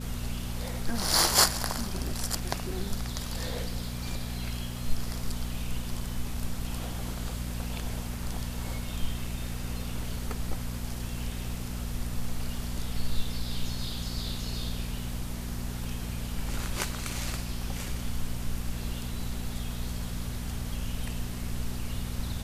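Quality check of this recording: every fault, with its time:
hum 60 Hz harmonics 4 -36 dBFS

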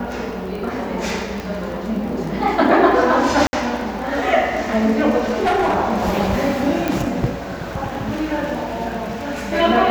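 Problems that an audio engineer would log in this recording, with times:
crackle 15 per s -26 dBFS
1.40 s: pop
3.47–3.53 s: dropout 60 ms
5.24–5.76 s: clipped -13.5 dBFS
6.88 s: pop

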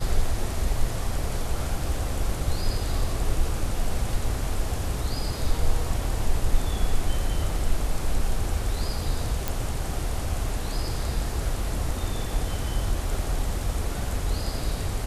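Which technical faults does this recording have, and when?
9.48 s: pop

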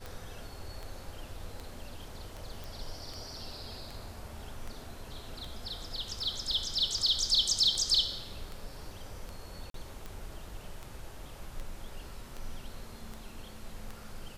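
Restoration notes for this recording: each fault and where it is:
tick 78 rpm
2.64 s: pop
9.70–9.74 s: dropout 43 ms

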